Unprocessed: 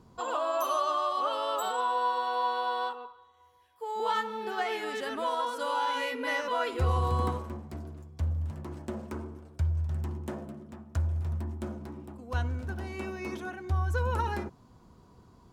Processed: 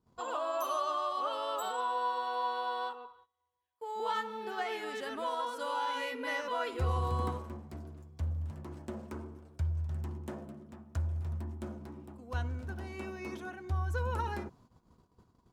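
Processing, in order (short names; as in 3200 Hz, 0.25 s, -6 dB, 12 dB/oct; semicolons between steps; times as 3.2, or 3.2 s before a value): gate -55 dBFS, range -18 dB; gain -4.5 dB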